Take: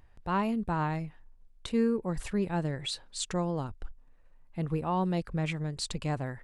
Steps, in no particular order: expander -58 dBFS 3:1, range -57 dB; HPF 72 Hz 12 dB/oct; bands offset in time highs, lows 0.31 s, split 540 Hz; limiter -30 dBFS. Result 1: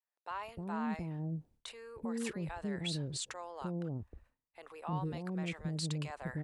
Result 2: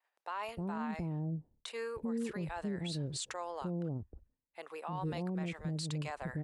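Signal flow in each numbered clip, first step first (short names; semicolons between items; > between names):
HPF > limiter > bands offset in time > expander; HPF > expander > bands offset in time > limiter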